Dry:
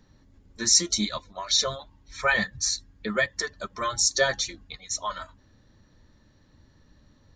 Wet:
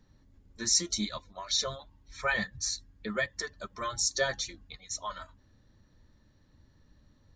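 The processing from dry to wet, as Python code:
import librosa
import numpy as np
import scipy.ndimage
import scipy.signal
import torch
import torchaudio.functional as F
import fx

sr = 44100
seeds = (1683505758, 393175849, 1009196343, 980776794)

y = fx.low_shelf(x, sr, hz=140.0, db=4.0)
y = F.gain(torch.from_numpy(y), -6.5).numpy()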